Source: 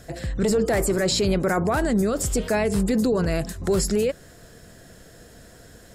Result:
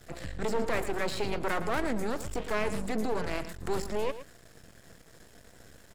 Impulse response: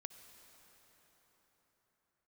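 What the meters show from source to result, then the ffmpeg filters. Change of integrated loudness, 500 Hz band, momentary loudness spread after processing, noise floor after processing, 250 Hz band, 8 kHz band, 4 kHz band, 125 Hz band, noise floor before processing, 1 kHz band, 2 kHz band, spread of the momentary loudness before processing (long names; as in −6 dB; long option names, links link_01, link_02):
−10.0 dB, −10.0 dB, 6 LU, −56 dBFS, −12.5 dB, −16.0 dB, −11.0 dB, −13.5 dB, −48 dBFS, −4.5 dB, −5.0 dB, 5 LU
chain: -filter_complex "[0:a]acrossover=split=220|940|2800[link_01][link_02][link_03][link_04];[link_01]alimiter=level_in=2dB:limit=-24dB:level=0:latency=1:release=405,volume=-2dB[link_05];[link_03]crystalizer=i=3.5:c=0[link_06];[link_04]acompressor=threshold=-40dB:ratio=6[link_07];[link_05][link_02][link_06][link_07]amix=inputs=4:normalize=0,aeval=exprs='max(val(0),0)':channel_layout=same,aecho=1:1:113:0.224,volume=-4dB"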